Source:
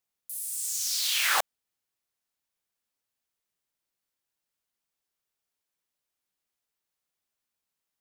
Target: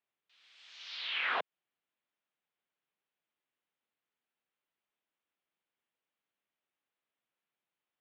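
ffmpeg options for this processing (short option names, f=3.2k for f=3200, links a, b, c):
-filter_complex "[0:a]highpass=f=240:t=q:w=0.5412,highpass=f=240:t=q:w=1.307,lowpass=f=3.5k:t=q:w=0.5176,lowpass=f=3.5k:t=q:w=0.7071,lowpass=f=3.5k:t=q:w=1.932,afreqshift=-87,acrossover=split=620|2300[a][b][c];[a]acompressor=threshold=-42dB:ratio=4[d];[b]acompressor=threshold=-34dB:ratio=4[e];[c]acompressor=threshold=-41dB:ratio=4[f];[d][e][f]amix=inputs=3:normalize=0"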